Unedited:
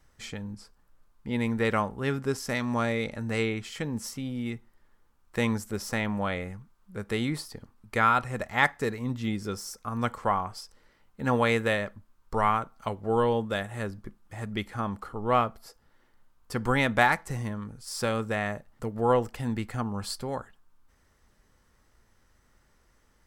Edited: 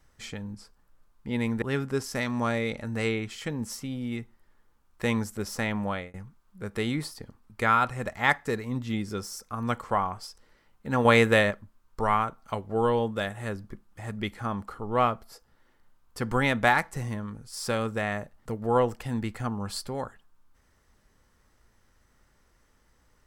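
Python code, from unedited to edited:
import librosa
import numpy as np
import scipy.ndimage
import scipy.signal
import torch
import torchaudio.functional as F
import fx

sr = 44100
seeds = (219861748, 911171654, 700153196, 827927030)

y = fx.edit(x, sr, fx.cut(start_s=1.62, length_s=0.34),
    fx.fade_out_span(start_s=6.15, length_s=0.33, curve='qsin'),
    fx.clip_gain(start_s=11.39, length_s=0.46, db=5.5), tone=tone)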